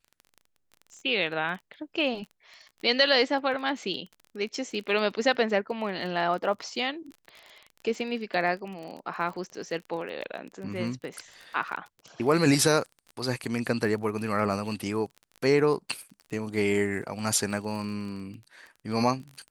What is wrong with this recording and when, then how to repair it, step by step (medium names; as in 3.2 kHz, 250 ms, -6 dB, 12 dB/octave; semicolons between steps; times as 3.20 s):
crackle 22 per s -36 dBFS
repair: de-click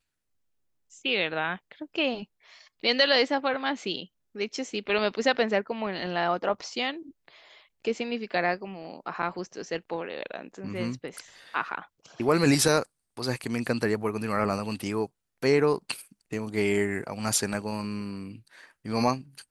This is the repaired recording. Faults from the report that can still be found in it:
nothing left